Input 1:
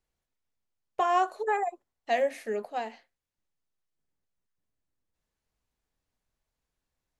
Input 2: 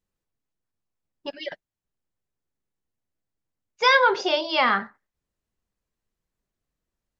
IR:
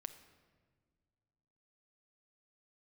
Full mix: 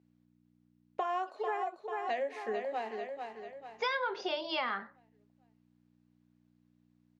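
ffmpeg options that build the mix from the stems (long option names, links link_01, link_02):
-filter_complex "[0:a]volume=-1dB,asplit=3[link_01][link_02][link_03];[link_02]volume=-8.5dB[link_04];[1:a]aeval=exprs='val(0)+0.00224*(sin(2*PI*60*n/s)+sin(2*PI*2*60*n/s)/2+sin(2*PI*3*60*n/s)/3+sin(2*PI*4*60*n/s)/4+sin(2*PI*5*60*n/s)/5)':channel_layout=same,volume=-4.5dB[link_05];[link_03]apad=whole_len=317420[link_06];[link_05][link_06]sidechaincompress=threshold=-41dB:ratio=8:attack=16:release=900[link_07];[link_04]aecho=0:1:442|884|1326|1768|2210|2652:1|0.46|0.212|0.0973|0.0448|0.0206[link_08];[link_01][link_07][link_08]amix=inputs=3:normalize=0,highpass=220,lowpass=4600,acompressor=threshold=-32dB:ratio=4"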